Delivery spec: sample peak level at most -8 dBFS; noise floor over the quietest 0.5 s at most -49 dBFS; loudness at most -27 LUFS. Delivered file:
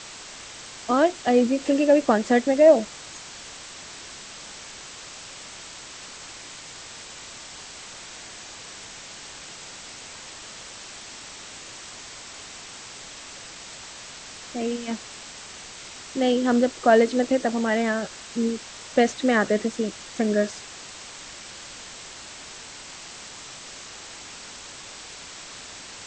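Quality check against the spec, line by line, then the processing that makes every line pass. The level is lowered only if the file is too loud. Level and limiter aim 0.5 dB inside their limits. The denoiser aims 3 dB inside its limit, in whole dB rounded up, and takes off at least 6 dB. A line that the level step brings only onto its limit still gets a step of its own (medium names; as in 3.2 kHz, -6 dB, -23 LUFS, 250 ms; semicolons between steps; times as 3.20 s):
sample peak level -5.0 dBFS: fail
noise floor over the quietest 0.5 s -41 dBFS: fail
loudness -22.5 LUFS: fail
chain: noise reduction 6 dB, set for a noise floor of -41 dBFS; trim -5 dB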